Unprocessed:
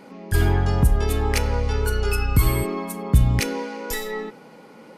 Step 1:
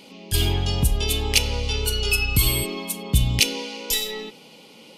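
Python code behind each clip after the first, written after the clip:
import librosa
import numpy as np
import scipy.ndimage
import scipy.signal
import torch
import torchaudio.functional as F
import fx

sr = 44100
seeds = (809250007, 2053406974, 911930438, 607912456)

y = fx.high_shelf_res(x, sr, hz=2200.0, db=10.5, q=3.0)
y = y * 10.0 ** (-3.5 / 20.0)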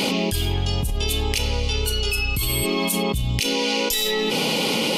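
y = fx.env_flatten(x, sr, amount_pct=100)
y = y * 10.0 ** (-9.0 / 20.0)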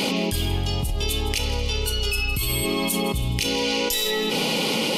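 y = fx.echo_feedback(x, sr, ms=161, feedback_pct=57, wet_db=-15)
y = y * 10.0 ** (-1.5 / 20.0)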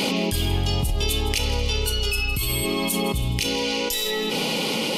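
y = fx.rider(x, sr, range_db=10, speed_s=0.5)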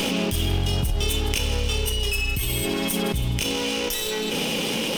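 y = fx.lower_of_two(x, sr, delay_ms=0.35)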